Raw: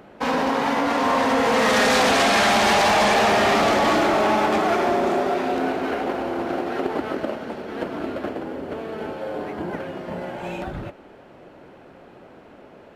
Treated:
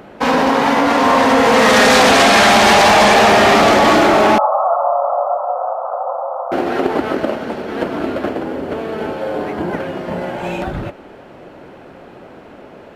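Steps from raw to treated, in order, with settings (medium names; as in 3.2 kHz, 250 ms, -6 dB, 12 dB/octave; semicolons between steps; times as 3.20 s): 4.38–6.52 s: Chebyshev band-pass 520–1300 Hz, order 5; trim +8 dB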